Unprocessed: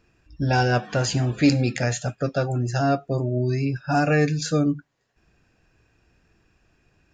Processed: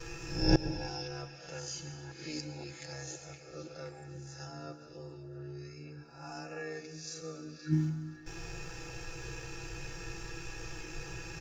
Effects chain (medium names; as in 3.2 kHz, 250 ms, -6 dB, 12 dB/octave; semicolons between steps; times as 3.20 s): reverse spectral sustain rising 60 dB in 0.38 s; gate with hold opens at -55 dBFS; peaking EQ 5.8 kHz +11.5 dB 0.48 oct; comb 2.3 ms, depth 74%; de-hum 49.77 Hz, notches 7; granular stretch 1.6×, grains 32 ms; inverted gate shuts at -28 dBFS, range -40 dB; on a send: repeats whose band climbs or falls 519 ms, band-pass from 3.5 kHz, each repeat -0.7 oct, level -6.5 dB; on the sum: plate-style reverb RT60 1.3 s, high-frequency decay 0.95×, pre-delay 100 ms, DRR 11 dB; trim +17 dB